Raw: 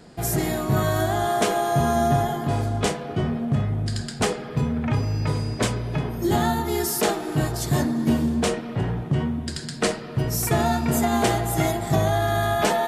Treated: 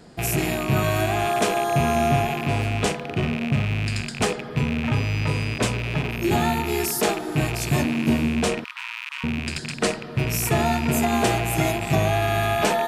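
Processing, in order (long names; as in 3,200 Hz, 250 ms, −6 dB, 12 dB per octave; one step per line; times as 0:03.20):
loose part that buzzes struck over −33 dBFS, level −19 dBFS
0:08.64–0:09.24: Chebyshev high-pass filter 950 Hz, order 6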